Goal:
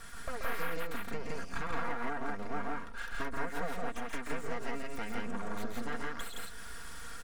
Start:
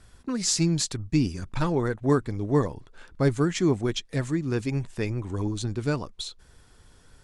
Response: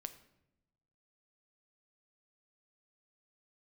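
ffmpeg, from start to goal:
-filter_complex "[0:a]aeval=exprs='abs(val(0))':c=same,acrossover=split=2800[a][b];[b]acompressor=threshold=-46dB:ratio=4:attack=1:release=60[c];[a][c]amix=inputs=2:normalize=0,highshelf=f=5.7k:g=8.5,aecho=1:1:4.3:0.61,acompressor=threshold=-40dB:ratio=5,equalizer=f=1.5k:w=0.99:g=11.5,aecho=1:1:131.2|169.1:0.562|0.891,volume=2dB"

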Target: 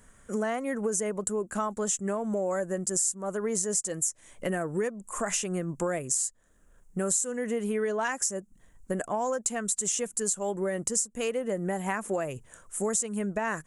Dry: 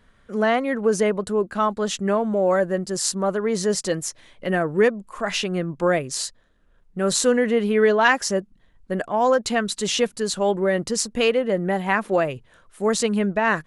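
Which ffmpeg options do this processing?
-af "highshelf=f=5.6k:t=q:w=3:g=11,acompressor=threshold=-27dB:ratio=6"

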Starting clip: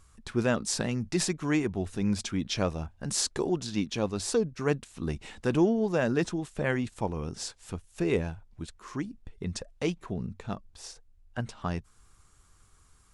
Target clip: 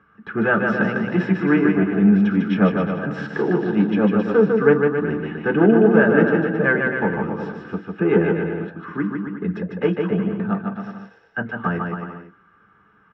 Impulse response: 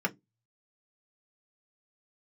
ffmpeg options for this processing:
-filter_complex "[0:a]aeval=exprs='clip(val(0),-1,0.0596)':c=same,highpass=110,equalizer=f=120:t=q:w=4:g=-6,equalizer=f=170:t=q:w=4:g=-6,equalizer=f=590:t=q:w=4:g=-3,equalizer=f=1.5k:t=q:w=4:g=6,equalizer=f=2.4k:t=q:w=4:g=-8,lowpass=f=2.8k:w=0.5412,lowpass=f=2.8k:w=1.3066,aecho=1:1:150|270|366|442.8|504.2:0.631|0.398|0.251|0.158|0.1[a];[1:a]atrim=start_sample=2205[b];[a][b]afir=irnorm=-1:irlink=0,volume=1.5dB"

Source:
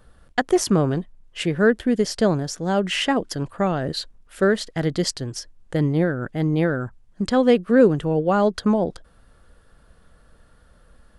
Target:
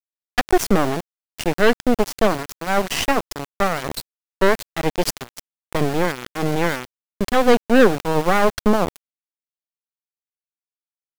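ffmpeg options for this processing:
-af "aeval=exprs='val(0)+0.00224*(sin(2*PI*50*n/s)+sin(2*PI*2*50*n/s)/2+sin(2*PI*3*50*n/s)/3+sin(2*PI*4*50*n/s)/4+sin(2*PI*5*50*n/s)/5)':c=same,aeval=exprs='val(0)*gte(abs(val(0)),0.0668)':c=same,aeval=exprs='0.596*(cos(1*acos(clip(val(0)/0.596,-1,1)))-cos(1*PI/2))+0.15*(cos(6*acos(clip(val(0)/0.596,-1,1)))-cos(6*PI/2))':c=same"

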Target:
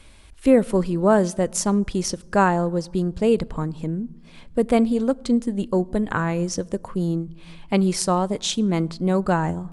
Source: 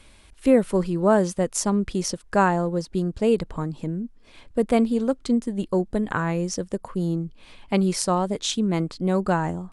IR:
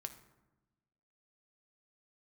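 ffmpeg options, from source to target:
-filter_complex "[0:a]asplit=2[a][b];[1:a]atrim=start_sample=2205,asetrate=32634,aresample=44100,lowshelf=f=180:g=11[c];[b][c]afir=irnorm=-1:irlink=0,volume=-12.5dB[d];[a][d]amix=inputs=2:normalize=0"

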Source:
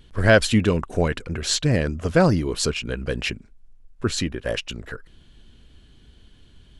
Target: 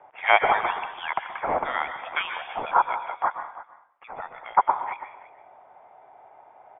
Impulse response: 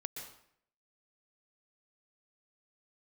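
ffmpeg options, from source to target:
-filter_complex "[0:a]asettb=1/sr,asplit=3[a][b][c];[a]atrim=end=3.024[d];[b]atrim=start=3.02:end=4.57,asetpts=PTS-STARTPTS,afade=t=in:d=0.004:c=qsin,afade=t=out:st=1.546:d=0.004:c=qsin,acompressor=threshold=-30dB:ratio=10[e];[c]atrim=start=4.566[f];[d][e]acrossfade=d=0.004:c1=hsin:c2=qsin[g];[g][f]acrossfade=d=0.004:c1=qsin:c2=hsin,highpass=f=3k:t=q:w=8.3,aecho=1:1:331:0.15,asplit=2[h][i];[1:a]atrim=start_sample=2205[j];[i][j]afir=irnorm=-1:irlink=0,volume=4.5dB[k];[h][k]amix=inputs=2:normalize=0,lowpass=f=3.2k:t=q:w=0.5098,lowpass=f=3.2k:t=q:w=0.6013,lowpass=f=3.2k:t=q:w=0.9,lowpass=f=3.2k:t=q:w=2.563,afreqshift=-3800,crystalizer=i=10:c=0,volume=-11.5dB"

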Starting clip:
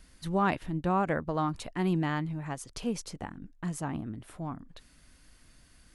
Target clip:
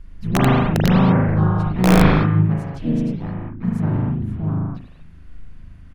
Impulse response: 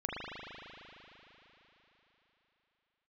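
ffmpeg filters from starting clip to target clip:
-filter_complex "[0:a]bass=f=250:g=14,treble=f=4k:g=-13,asplit=4[a][b][c][d];[b]asetrate=29433,aresample=44100,atempo=1.49831,volume=-4dB[e];[c]asetrate=52444,aresample=44100,atempo=0.840896,volume=-10dB[f];[d]asetrate=58866,aresample=44100,atempo=0.749154,volume=-10dB[g];[a][e][f][g]amix=inputs=4:normalize=0,aeval=exprs='(mod(2.66*val(0)+1,2)-1)/2.66':c=same[h];[1:a]atrim=start_sample=2205,afade=t=out:st=0.29:d=0.01,atrim=end_sample=13230[i];[h][i]afir=irnorm=-1:irlink=0"

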